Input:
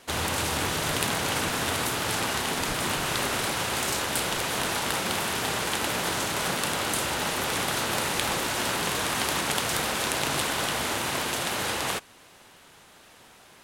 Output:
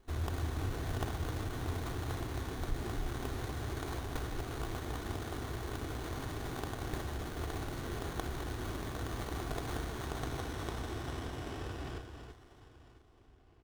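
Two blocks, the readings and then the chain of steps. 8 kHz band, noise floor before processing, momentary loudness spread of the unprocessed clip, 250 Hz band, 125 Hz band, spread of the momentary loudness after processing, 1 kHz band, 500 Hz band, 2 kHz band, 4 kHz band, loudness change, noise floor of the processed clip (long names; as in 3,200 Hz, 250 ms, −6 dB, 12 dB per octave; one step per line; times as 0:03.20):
−22.0 dB, −53 dBFS, 1 LU, −8.0 dB, −1.5 dB, 4 LU, −14.5 dB, −11.0 dB, −18.0 dB, −20.5 dB, −13.5 dB, −60 dBFS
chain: guitar amp tone stack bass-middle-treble 10-0-1
comb filter 2.7 ms, depth 68%
in parallel at −2 dB: brickwall limiter −36.5 dBFS, peak gain reduction 10 dB
on the sum: low-pass filter sweep 13,000 Hz → 1,000 Hz, 0:09.27–0:12.89
on a send: delay that swaps between a low-pass and a high-pass 333 ms, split 2,400 Hz, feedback 54%, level −7 dB
on the sum: windowed peak hold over 17 samples
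level +4 dB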